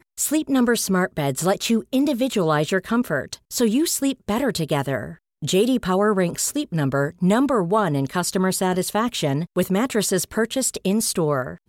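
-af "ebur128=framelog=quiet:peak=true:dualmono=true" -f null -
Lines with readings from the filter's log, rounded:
Integrated loudness:
  I:         -18.5 LUFS
  Threshold: -28.6 LUFS
Loudness range:
  LRA:         1.4 LU
  Threshold: -38.6 LUFS
  LRA low:   -19.3 LUFS
  LRA high:  -17.9 LUFS
True peak:
  Peak:       -7.7 dBFS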